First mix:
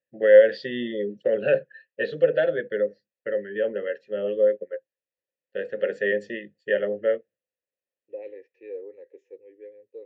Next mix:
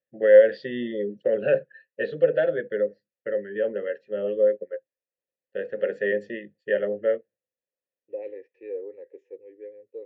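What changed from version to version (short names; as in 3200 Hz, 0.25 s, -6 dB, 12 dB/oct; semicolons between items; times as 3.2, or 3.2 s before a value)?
second voice +3.0 dB; master: add high shelf 3400 Hz -11 dB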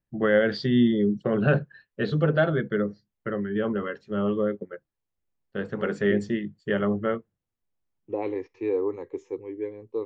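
first voice -9.5 dB; master: remove vowel filter e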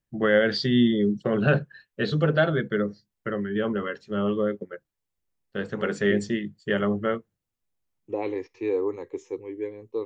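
master: add high shelf 3400 Hz +11 dB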